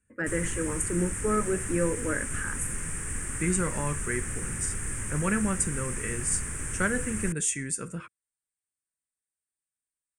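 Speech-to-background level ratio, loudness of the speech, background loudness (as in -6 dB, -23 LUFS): 2.5 dB, -30.5 LUFS, -33.0 LUFS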